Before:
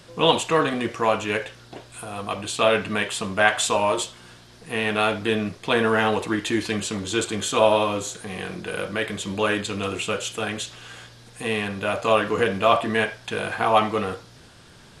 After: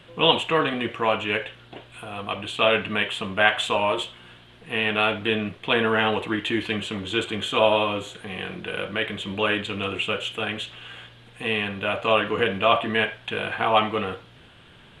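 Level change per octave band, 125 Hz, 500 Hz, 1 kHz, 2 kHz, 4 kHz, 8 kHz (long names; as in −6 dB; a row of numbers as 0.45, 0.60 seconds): −2.0, −2.0, −1.5, +1.0, +2.5, −14.0 decibels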